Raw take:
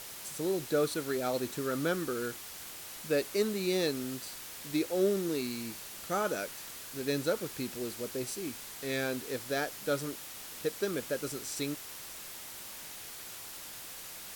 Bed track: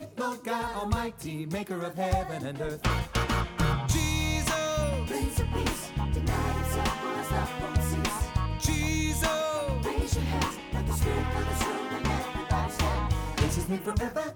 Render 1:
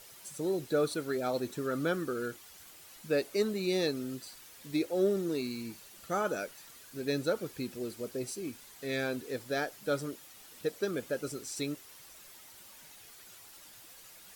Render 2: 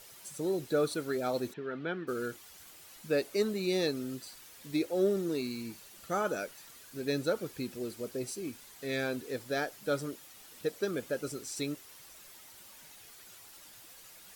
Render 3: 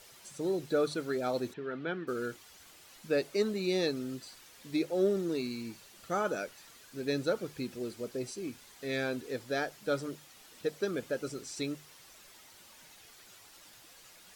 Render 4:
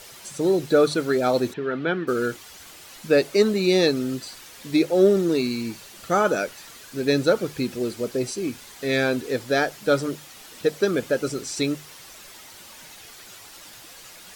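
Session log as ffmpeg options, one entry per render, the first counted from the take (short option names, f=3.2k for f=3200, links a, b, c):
-af "afftdn=nr=10:nf=-45"
-filter_complex "[0:a]asplit=3[a][b][c];[a]afade=t=out:st=1.52:d=0.02[d];[b]highpass=200,equalizer=f=290:t=q:w=4:g=-8,equalizer=f=550:t=q:w=4:g=-9,equalizer=f=1.2k:t=q:w=4:g=-9,lowpass=f=3.2k:w=0.5412,lowpass=f=3.2k:w=1.3066,afade=t=in:st=1.52:d=0.02,afade=t=out:st=2.07:d=0.02[e];[c]afade=t=in:st=2.07:d=0.02[f];[d][e][f]amix=inputs=3:normalize=0"
-filter_complex "[0:a]bandreject=f=50:t=h:w=6,bandreject=f=100:t=h:w=6,bandreject=f=150:t=h:w=6,acrossover=split=7800[a][b];[b]acompressor=threshold=-59dB:ratio=4:attack=1:release=60[c];[a][c]amix=inputs=2:normalize=0"
-af "volume=11.5dB"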